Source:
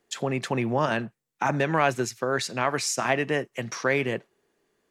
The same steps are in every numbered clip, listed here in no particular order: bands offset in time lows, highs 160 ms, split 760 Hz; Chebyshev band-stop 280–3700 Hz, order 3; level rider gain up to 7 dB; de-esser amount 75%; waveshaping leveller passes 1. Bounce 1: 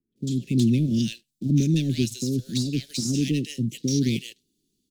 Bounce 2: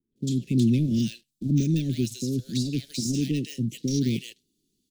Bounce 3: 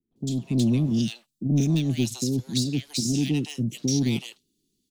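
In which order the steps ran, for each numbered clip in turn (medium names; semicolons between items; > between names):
bands offset in time > waveshaping leveller > Chebyshev band-stop > de-esser > level rider; level rider > de-esser > bands offset in time > waveshaping leveller > Chebyshev band-stop; de-esser > Chebyshev band-stop > waveshaping leveller > level rider > bands offset in time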